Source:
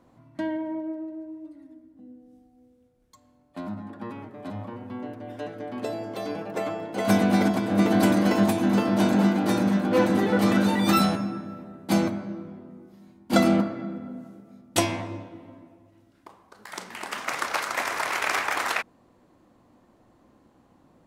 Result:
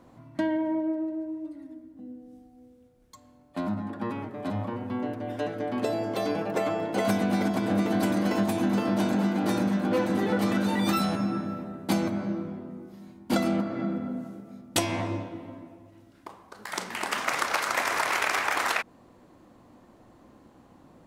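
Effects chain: compression 6:1, threshold -27 dBFS, peak gain reduction 12.5 dB; trim +4.5 dB

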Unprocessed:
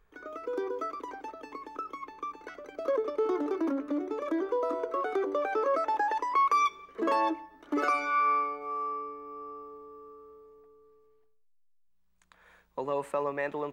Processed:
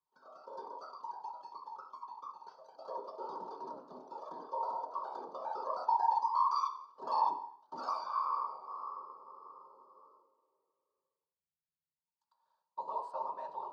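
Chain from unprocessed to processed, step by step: gate -50 dBFS, range -10 dB; whisper effect; two resonant band-passes 2.1 kHz, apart 2.3 oct; on a send: reverberation RT60 0.55 s, pre-delay 3 ms, DRR 4.5 dB

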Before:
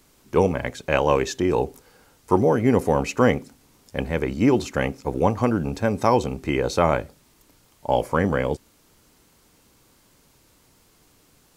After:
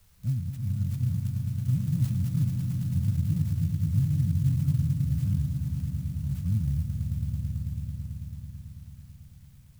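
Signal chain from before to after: gliding tape speed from 142% -> 94%; inverse Chebyshev band-stop 360–7400 Hz, stop band 50 dB; echo with a slow build-up 110 ms, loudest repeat 5, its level -8.5 dB; sampling jitter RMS 0.037 ms; trim +5 dB

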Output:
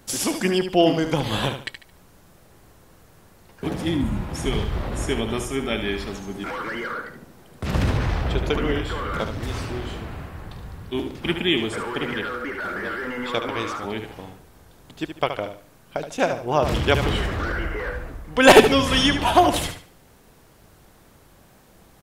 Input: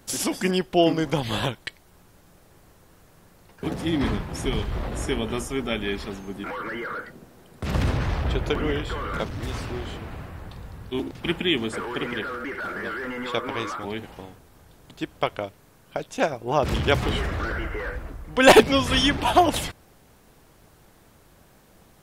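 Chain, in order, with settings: 3.97–4.23 s: spectral replace 310–6400 Hz after; 6.13–6.92 s: dynamic bell 5.9 kHz, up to +7 dB, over -56 dBFS, Q 0.89; on a send: feedback delay 73 ms, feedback 30%, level -8.5 dB; on the sum: trim +1.5 dB

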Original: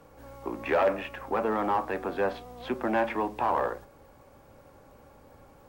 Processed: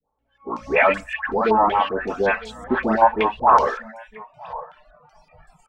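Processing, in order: bass shelf 410 Hz -2.5 dB; in parallel at -3 dB: level held to a coarse grid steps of 10 dB; on the sum: bass shelf 89 Hz +7 dB; comb 4.6 ms, depth 38%; phase dispersion highs, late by 130 ms, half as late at 1.2 kHz; reverb removal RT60 0.75 s; delay 956 ms -19.5 dB; level rider gain up to 11 dB; spectral noise reduction 25 dB; step-sequenced low-pass 5.3 Hz 920–7800 Hz; trim -4.5 dB

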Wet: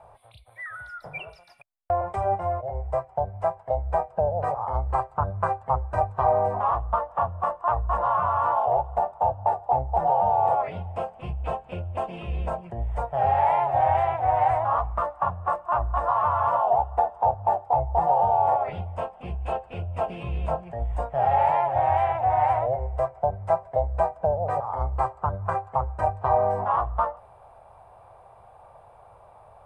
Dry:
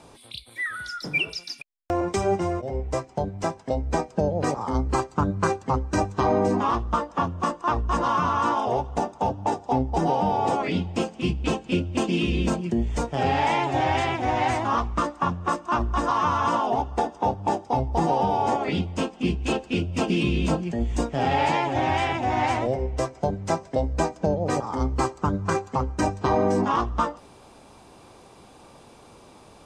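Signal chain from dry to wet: FFT filter 110 Hz 0 dB, 280 Hz -25 dB, 660 Hz +7 dB, 1.9 kHz -7 dB, 6.2 kHz -29 dB, 9.6 kHz -13 dB; trim -1 dB

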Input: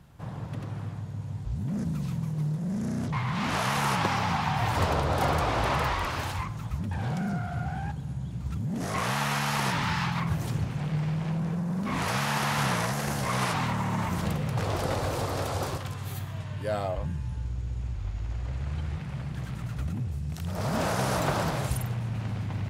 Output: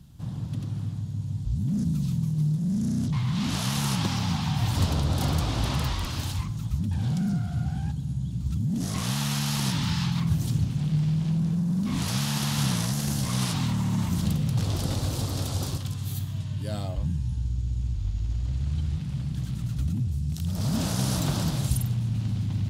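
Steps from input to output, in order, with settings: high-order bell 970 Hz -13 dB 3 oct; trim +4.5 dB

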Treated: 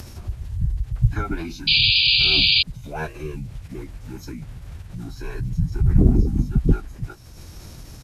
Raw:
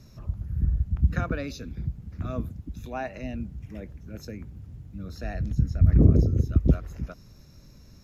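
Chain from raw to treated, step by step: doubling 15 ms -8 dB; bit crusher 9-bit; formant-preserving pitch shift -9 st; painted sound noise, 1.67–2.63 s, 2.3–4.9 kHz -20 dBFS; upward compressor, threshold -32 dBFS; trim +3 dB

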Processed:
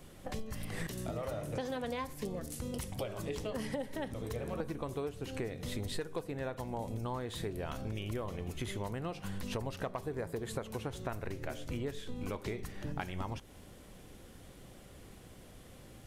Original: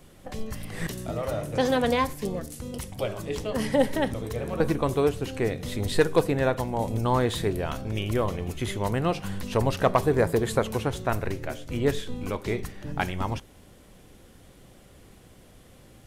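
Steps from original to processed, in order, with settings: compression 10:1, threshold -33 dBFS, peak gain reduction 19 dB; trim -1.5 dB

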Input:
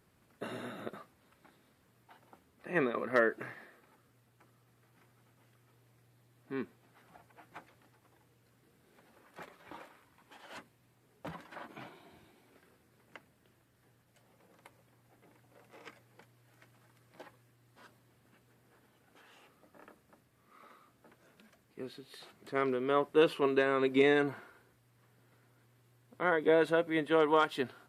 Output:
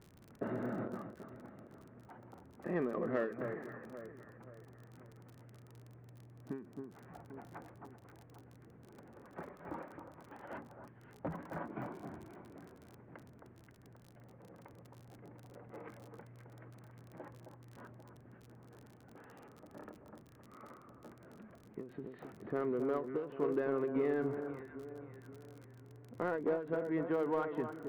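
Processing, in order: low-pass 2 kHz 24 dB/octave; tilt shelf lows +5.5 dB, about 790 Hz; compression 2.5:1, threshold -40 dBFS, peak gain reduction 14.5 dB; echo whose repeats swap between lows and highs 265 ms, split 1.4 kHz, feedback 63%, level -8 dB; crackle 39 per s -51 dBFS; in parallel at -4.5 dB: saturation -38 dBFS, distortion -9 dB; on the sum: endings held to a fixed fall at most 120 dB/s; trim +1 dB

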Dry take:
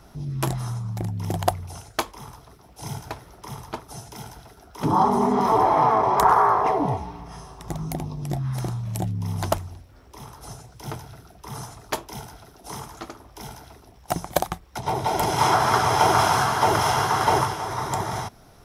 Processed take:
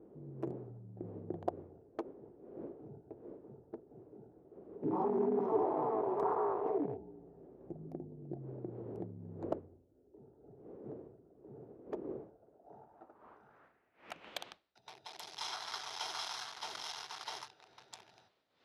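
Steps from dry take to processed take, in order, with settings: local Wiener filter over 41 samples; wind noise 440 Hz -40 dBFS; band-pass sweep 390 Hz -> 4.1 kHz, 12.11–14.65 s; trim -5 dB

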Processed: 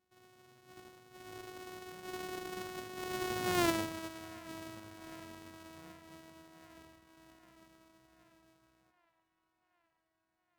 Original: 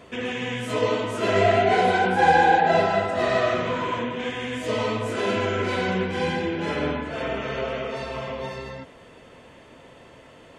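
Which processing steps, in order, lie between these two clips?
sorted samples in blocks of 128 samples; Doppler pass-by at 3.63 s, 22 m/s, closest 2 m; feedback echo behind a band-pass 770 ms, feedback 69%, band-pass 1.3 kHz, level -21.5 dB; trim -2 dB

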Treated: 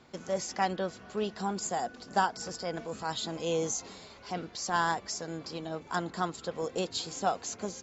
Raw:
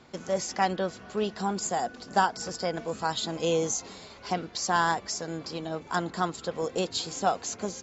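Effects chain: 2.47–4.74 s: transient shaper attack -5 dB, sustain +1 dB; trim -3.5 dB

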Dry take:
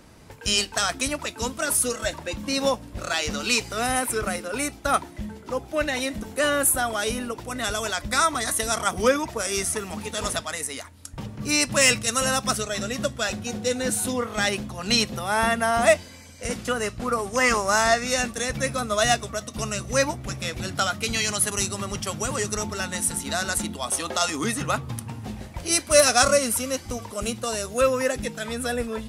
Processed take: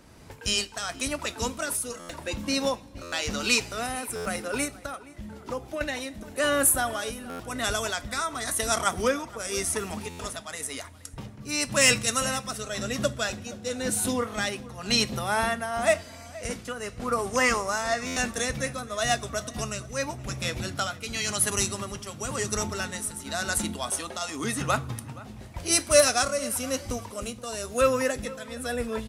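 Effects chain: 4.64–5.81 s: compression 12:1, threshold -27 dBFS, peak gain reduction 11.5 dB; tremolo triangle 0.94 Hz, depth 70%; echo from a far wall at 81 m, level -19 dB; reverberation, pre-delay 3 ms, DRR 15 dB; buffer glitch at 1.99/3.02/4.15/7.29/10.09/18.06 s, samples 512, times 8

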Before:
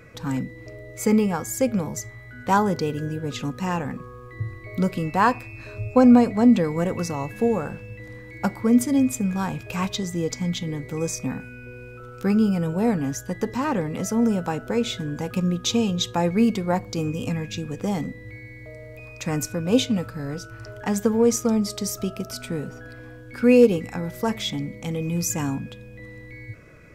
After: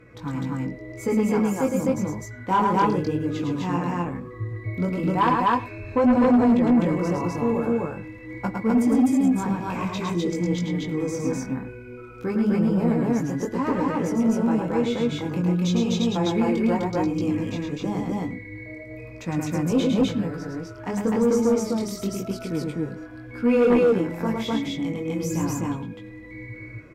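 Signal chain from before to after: treble shelf 3.4 kHz -8.5 dB; speakerphone echo 100 ms, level -18 dB; chorus 0.94 Hz, delay 16.5 ms, depth 6.6 ms; small resonant body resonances 320/1000/2200 Hz, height 8 dB, ringing for 45 ms; on a send: loudspeakers at several distances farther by 37 m -4 dB, 87 m 0 dB; on the sum: Chebyshev shaper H 5 -14 dB, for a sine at -2.5 dBFS; trim -6.5 dB

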